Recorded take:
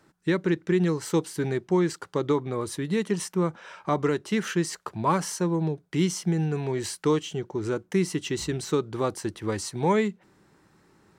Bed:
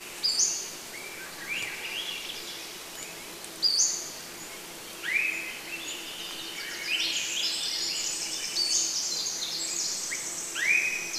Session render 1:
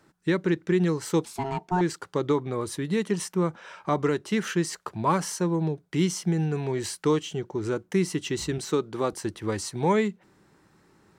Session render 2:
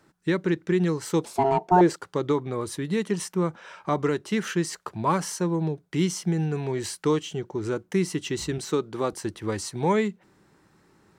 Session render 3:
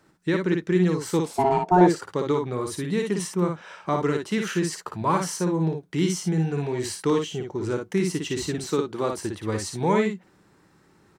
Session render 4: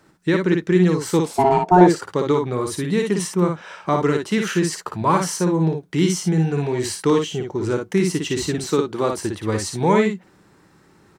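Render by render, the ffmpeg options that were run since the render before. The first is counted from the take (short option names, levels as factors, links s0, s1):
-filter_complex "[0:a]asettb=1/sr,asplit=3[s0][s1][s2];[s0]atrim=end=1.254[s3];[s1]atrim=start=1.25:end=1.81,asetpts=PTS-STARTPTS,afade=t=in:d=0.004:c=qsin,afade=t=out:st=0.556:d=0.004:c=qsin,aeval=exprs='val(0)*sin(2*PI*540*n/s)':c=same[s4];[s2]atrim=start=1.806[s5];[s3][s4]acrossfade=d=0.004:c1=hsin:c2=qsin[s6];[s6][s5]acrossfade=d=0.004:c1=qsin:c2=hsin,asettb=1/sr,asplit=3[s7][s8][s9];[s7]atrim=end=8.584[s10];[s8]atrim=start=8.58:end=9.13,asetpts=PTS-STARTPTS,afade=t=in:d=0.004:c=qsin,afade=t=out:st=0.546:d=0.004:c=qsin,highpass=150[s11];[s9]atrim=start=9.126[s12];[s10][s11]acrossfade=d=0.004:c1=hsin:c2=qsin[s13];[s13][s12]acrossfade=d=0.004:c1=qsin:c2=hsin"
-filter_complex "[0:a]asettb=1/sr,asplit=3[s0][s1][s2];[s0]atrim=end=1.244[s3];[s1]atrim=start=1.24:end=1.96,asetpts=PTS-STARTPTS,afade=t=in:d=0.004:c=qsin,afade=t=out:st=0.716:d=0.004:c=qsin,equalizer=f=570:t=o:w=1.5:g=14[s4];[s2]atrim=start=1.956[s5];[s3][s4]acrossfade=d=0.004:c1=hsin:c2=qsin[s6];[s6][s5]acrossfade=d=0.004:c1=qsin:c2=hsin"
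-af "aecho=1:1:56|67:0.596|0.133"
-af "volume=1.78,alimiter=limit=0.891:level=0:latency=1"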